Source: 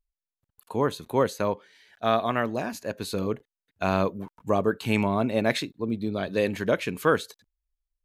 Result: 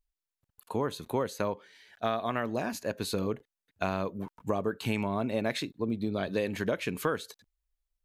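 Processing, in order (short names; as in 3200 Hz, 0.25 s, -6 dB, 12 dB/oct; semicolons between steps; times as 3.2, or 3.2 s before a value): compressor, threshold -26 dBFS, peak gain reduction 10 dB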